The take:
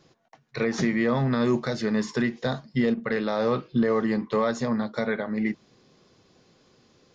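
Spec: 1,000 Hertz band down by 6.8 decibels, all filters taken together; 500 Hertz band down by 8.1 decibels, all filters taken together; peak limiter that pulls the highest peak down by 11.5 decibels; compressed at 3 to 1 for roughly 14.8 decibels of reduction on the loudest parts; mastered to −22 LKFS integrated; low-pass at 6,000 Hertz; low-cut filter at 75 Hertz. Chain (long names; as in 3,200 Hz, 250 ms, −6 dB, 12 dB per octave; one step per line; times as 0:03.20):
high-pass filter 75 Hz
low-pass filter 6,000 Hz
parametric band 500 Hz −8.5 dB
parametric band 1,000 Hz −6.5 dB
downward compressor 3 to 1, threshold −43 dBFS
level +26 dB
brickwall limiter −13.5 dBFS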